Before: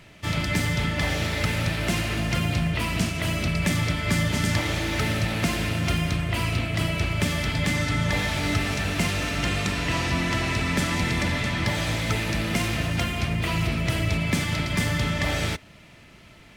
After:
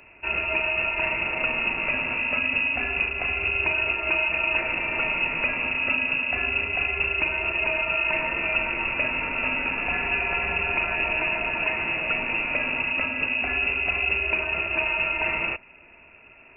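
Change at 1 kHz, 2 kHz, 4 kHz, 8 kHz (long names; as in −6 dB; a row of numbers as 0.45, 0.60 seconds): +0.5 dB, +6.0 dB, −4.0 dB, below −40 dB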